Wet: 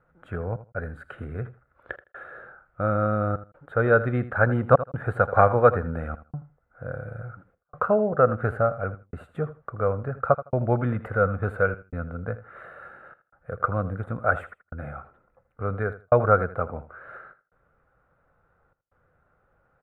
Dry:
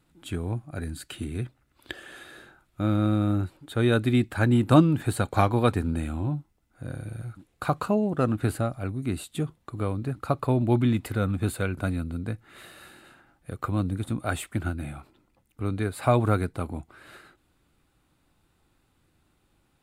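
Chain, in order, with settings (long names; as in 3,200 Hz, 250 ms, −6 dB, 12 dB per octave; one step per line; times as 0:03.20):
gate pattern "xxxxxx..xxxxxxx" 161 BPM −60 dB
drawn EQ curve 170 Hz 0 dB, 320 Hz −9 dB, 500 Hz +12 dB, 960 Hz +2 dB, 1,400 Hz +12 dB, 2,600 Hz −12 dB, 4,600 Hz −28 dB
on a send: repeating echo 80 ms, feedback 18%, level −15 dB
on the sum: level −1 dB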